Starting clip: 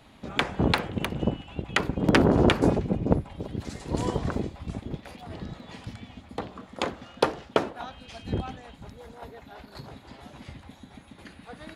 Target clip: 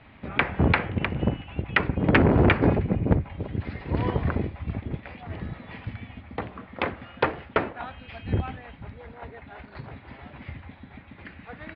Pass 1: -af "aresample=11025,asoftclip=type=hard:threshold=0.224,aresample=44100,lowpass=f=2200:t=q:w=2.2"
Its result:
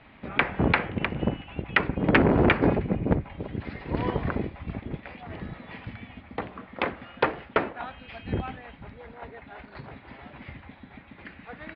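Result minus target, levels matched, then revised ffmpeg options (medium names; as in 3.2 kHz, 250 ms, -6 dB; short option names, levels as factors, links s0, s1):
125 Hz band -3.0 dB
-af "aresample=11025,asoftclip=type=hard:threshold=0.224,aresample=44100,lowpass=f=2200:t=q:w=2.2,equalizer=f=89:w=1.2:g=7"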